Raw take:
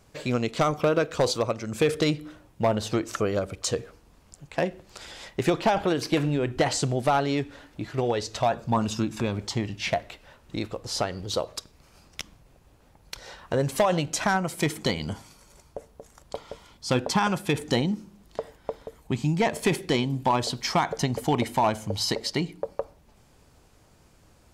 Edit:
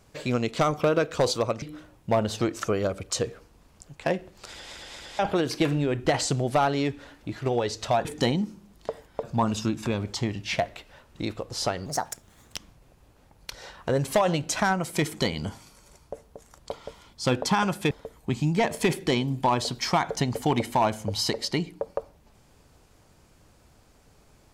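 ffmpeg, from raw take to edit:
-filter_complex "[0:a]asplit=10[a][b][c][d][e][f][g][h][i][j];[a]atrim=end=1.622[k];[b]atrim=start=2.138:end=5.252[l];[c]atrim=start=5.018:end=5.252[m];[d]atrim=start=5.018:end=5.252[n];[e]atrim=start=5.708:end=8.572[o];[f]atrim=start=17.548:end=18.732[p];[g]atrim=start=8.568:end=11.204[q];[h]atrim=start=11.2:end=12.2,asetpts=PTS-STARTPTS,asetrate=63063,aresample=44100,atrim=end_sample=30839,asetpts=PTS-STARTPTS[r];[i]atrim=start=12.196:end=17.552[s];[j]atrim=start=18.728[t];[k][l]acrossfade=d=0.004:c1=hsin:c2=hsin[u];[u][m]acrossfade=d=0.004:c1=hsin:c2=hsin[v];[v][n]acrossfade=d=0.004:c1=hsin:c2=hsin[w];[w][o]acrossfade=d=0.004:c1=hsin:c2=hsin[x];[x][p]acrossfade=d=0.004:c1=hsin:c2=hsin[y];[y][q]acrossfade=d=0.004:c1=hsin:c2=hsin[z];[z][r]acrossfade=d=0.004:c1=hsin:c2=hsin[aa];[aa][s]acrossfade=d=0.004:c1=hsin:c2=hsin[ab];[ab][t]acrossfade=d=0.004:c1=hsin:c2=hsin"

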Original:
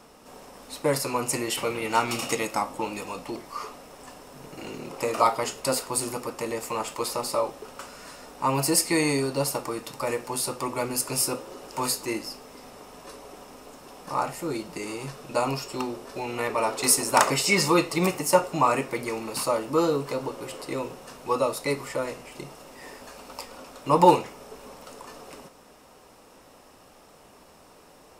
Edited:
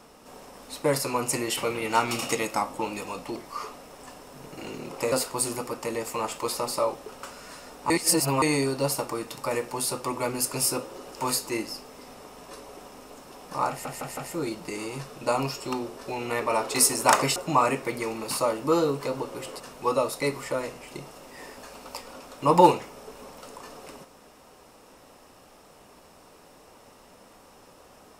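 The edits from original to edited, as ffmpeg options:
-filter_complex "[0:a]asplit=9[a][b][c][d][e][f][g][h][i];[a]atrim=end=5.122[j];[b]atrim=start=5.678:end=8.462[k];[c]atrim=start=8.458:end=8.982,asetpts=PTS-STARTPTS,areverse[l];[d]atrim=start=8.978:end=14.412[m];[e]atrim=start=14.248:end=14.412[n];[f]atrim=start=14.248:end=14.412[o];[g]atrim=start=14.248:end=17.442[p];[h]atrim=start=18.418:end=20.662[q];[i]atrim=start=21.038[r];[j][k]acrossfade=d=0.004:c1=hsin:c2=hsin[s];[s][l]acrossfade=d=0.004:c1=hsin:c2=hsin[t];[t][m]acrossfade=d=0.004:c1=hsin:c2=hsin[u];[u][n]acrossfade=d=0.004:c1=hsin:c2=hsin[v];[v][o]acrossfade=d=0.004:c1=hsin:c2=hsin[w];[w][p]acrossfade=d=0.004:c1=hsin:c2=hsin[x];[x][q]acrossfade=d=0.004:c1=hsin:c2=hsin[y];[y][r]acrossfade=d=0.004:c1=hsin:c2=hsin"

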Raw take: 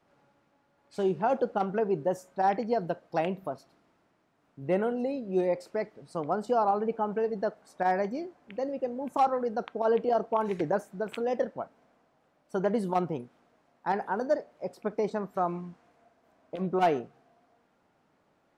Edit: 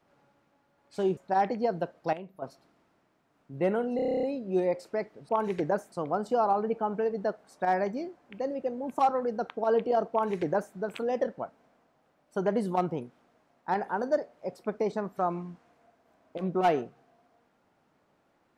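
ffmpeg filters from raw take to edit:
-filter_complex "[0:a]asplit=15[a][b][c][d][e][f][g][h][i][j][k][l][m][n][o];[a]atrim=end=1.172[p];[b]atrim=start=2.248:end=3.212[q];[c]atrim=start=3.208:end=3.502,asetpts=PTS-STARTPTS,volume=-11dB[r];[d]atrim=start=3.498:end=5.072[s];[e]atrim=start=5.038:end=5.072[t];[f]atrim=start=5.038:end=5.072[u];[g]atrim=start=5.038:end=5.072[v];[h]atrim=start=5.038:end=5.072[w];[i]atrim=start=5.038:end=5.072[x];[j]atrim=start=5.038:end=5.072[y];[k]atrim=start=5.038:end=5.072[z];[l]atrim=start=5.038:end=5.072[aa];[m]atrim=start=5.038:end=6.102[ab];[n]atrim=start=10.298:end=10.932[ac];[o]atrim=start=6.098[ad];[p][q]acrossfade=d=0.004:c1=hsin:c2=hsin[ae];[ae][r]acrossfade=d=0.004:c1=hsin:c2=hsin[af];[af][s]acrossfade=d=0.004:c1=hsin:c2=hsin[ag];[ag][t]acrossfade=d=0.004:c1=hsin:c2=hsin[ah];[ah][u]acrossfade=d=0.004:c1=hsin:c2=hsin[ai];[ai][v]acrossfade=d=0.004:c1=hsin:c2=hsin[aj];[aj][w]acrossfade=d=0.004:c1=hsin:c2=hsin[ak];[ak][x]acrossfade=d=0.004:c1=hsin:c2=hsin[al];[al][y]acrossfade=d=0.004:c1=hsin:c2=hsin[am];[am][z]acrossfade=d=0.004:c1=hsin:c2=hsin[an];[an][aa]acrossfade=d=0.004:c1=hsin:c2=hsin[ao];[ao][ab]acrossfade=d=0.004:c1=hsin:c2=hsin[ap];[ap][ac]acrossfade=d=0.004:c1=hsin:c2=hsin[aq];[aq][ad]acrossfade=d=0.004:c1=hsin:c2=hsin"

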